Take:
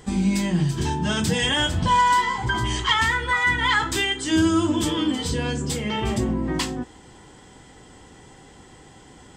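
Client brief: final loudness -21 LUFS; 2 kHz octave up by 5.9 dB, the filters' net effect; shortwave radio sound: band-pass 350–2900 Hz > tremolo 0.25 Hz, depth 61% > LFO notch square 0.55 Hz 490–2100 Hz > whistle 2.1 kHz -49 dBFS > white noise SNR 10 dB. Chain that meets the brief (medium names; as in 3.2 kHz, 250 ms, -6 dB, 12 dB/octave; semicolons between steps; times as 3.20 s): band-pass 350–2900 Hz; peaking EQ 2 kHz +7.5 dB; tremolo 0.25 Hz, depth 61%; LFO notch square 0.55 Hz 490–2100 Hz; whistle 2.1 kHz -49 dBFS; white noise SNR 10 dB; trim +5 dB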